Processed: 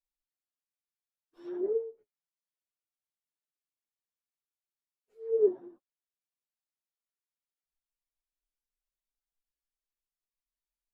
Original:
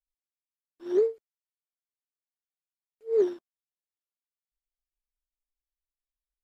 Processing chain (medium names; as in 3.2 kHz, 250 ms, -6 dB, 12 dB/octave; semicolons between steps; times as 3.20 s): plain phase-vocoder stretch 1.7×; flange 1.2 Hz, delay 2.9 ms, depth 7.2 ms, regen +42%; low-pass that closes with the level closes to 710 Hz, closed at -34.5 dBFS; trim +2 dB